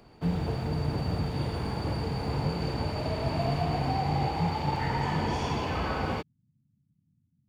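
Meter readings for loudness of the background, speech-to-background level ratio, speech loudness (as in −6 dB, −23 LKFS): −31.5 LKFS, −4.5 dB, −36.0 LKFS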